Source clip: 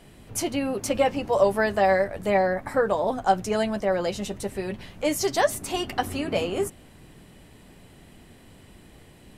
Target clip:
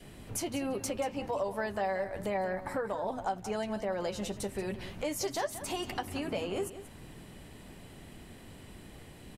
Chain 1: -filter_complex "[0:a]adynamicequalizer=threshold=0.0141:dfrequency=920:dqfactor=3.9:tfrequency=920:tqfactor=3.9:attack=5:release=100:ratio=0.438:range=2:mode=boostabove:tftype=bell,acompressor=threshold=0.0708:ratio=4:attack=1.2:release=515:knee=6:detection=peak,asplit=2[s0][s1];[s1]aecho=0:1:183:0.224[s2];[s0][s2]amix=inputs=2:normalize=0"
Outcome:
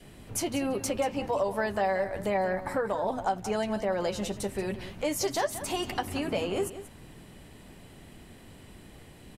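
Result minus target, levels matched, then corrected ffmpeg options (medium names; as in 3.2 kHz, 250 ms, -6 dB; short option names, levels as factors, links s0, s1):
compression: peak gain reduction -5 dB
-filter_complex "[0:a]adynamicequalizer=threshold=0.0141:dfrequency=920:dqfactor=3.9:tfrequency=920:tqfactor=3.9:attack=5:release=100:ratio=0.438:range=2:mode=boostabove:tftype=bell,acompressor=threshold=0.0335:ratio=4:attack=1.2:release=515:knee=6:detection=peak,asplit=2[s0][s1];[s1]aecho=0:1:183:0.224[s2];[s0][s2]amix=inputs=2:normalize=0"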